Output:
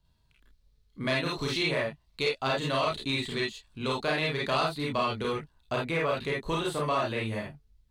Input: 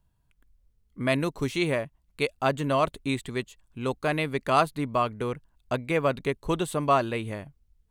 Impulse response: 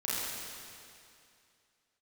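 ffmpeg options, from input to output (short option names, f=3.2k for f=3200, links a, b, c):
-filter_complex "[1:a]atrim=start_sample=2205,atrim=end_sample=3528,asetrate=43218,aresample=44100[a];[0:a][a]afir=irnorm=-1:irlink=0,acrossover=split=670|2100[b][c][d];[b]acompressor=threshold=-30dB:ratio=4[e];[c]acompressor=threshold=-29dB:ratio=4[f];[d]acompressor=threshold=-39dB:ratio=4[g];[e][f][g]amix=inputs=3:normalize=0,asetnsamples=n=441:p=0,asendcmd='5.32 equalizer g 6.5',equalizer=f=4.1k:t=o:w=0.78:g=13.5,asoftclip=type=tanh:threshold=-17dB,highshelf=f=7k:g=-5"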